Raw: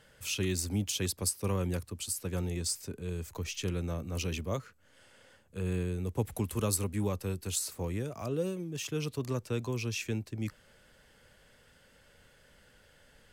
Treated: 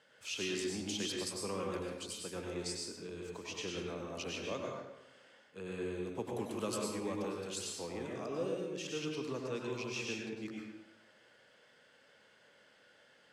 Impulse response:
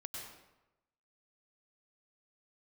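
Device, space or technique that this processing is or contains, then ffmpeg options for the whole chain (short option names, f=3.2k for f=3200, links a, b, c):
supermarket ceiling speaker: -filter_complex "[0:a]highpass=270,lowpass=6k[a];[1:a]atrim=start_sample=2205[b];[a][b]afir=irnorm=-1:irlink=0,volume=1dB"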